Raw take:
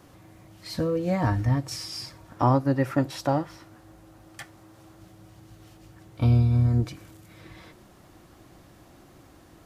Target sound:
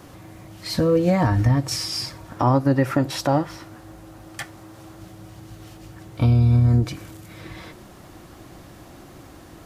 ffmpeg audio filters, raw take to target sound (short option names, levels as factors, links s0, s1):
-af "alimiter=limit=0.126:level=0:latency=1:release=126,volume=2.66"